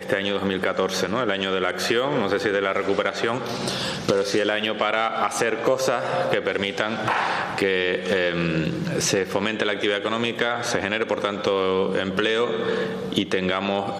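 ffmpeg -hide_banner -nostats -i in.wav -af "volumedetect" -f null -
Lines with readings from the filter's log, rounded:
mean_volume: -23.4 dB
max_volume: -4.1 dB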